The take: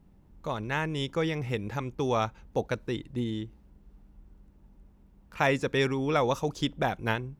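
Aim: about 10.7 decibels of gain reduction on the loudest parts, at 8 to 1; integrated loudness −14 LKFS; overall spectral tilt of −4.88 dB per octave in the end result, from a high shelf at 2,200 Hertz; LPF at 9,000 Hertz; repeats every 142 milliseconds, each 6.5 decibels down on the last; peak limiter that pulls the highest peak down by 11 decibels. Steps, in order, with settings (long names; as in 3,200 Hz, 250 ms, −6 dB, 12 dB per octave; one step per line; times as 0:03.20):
low-pass filter 9,000 Hz
high-shelf EQ 2,200 Hz +4 dB
downward compressor 8 to 1, threshold −32 dBFS
brickwall limiter −29.5 dBFS
repeating echo 142 ms, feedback 47%, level −6.5 dB
level +25.5 dB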